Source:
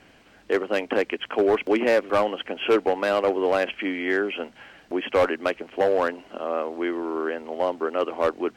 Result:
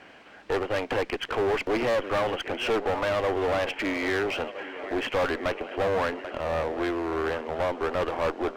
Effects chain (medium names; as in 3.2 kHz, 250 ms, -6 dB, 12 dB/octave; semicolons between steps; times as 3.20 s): shuffle delay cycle 1314 ms, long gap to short 1.5:1, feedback 44%, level -19.5 dB; overdrive pedal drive 16 dB, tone 1.7 kHz, clips at -12 dBFS; one-sided clip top -27.5 dBFS; trim -2 dB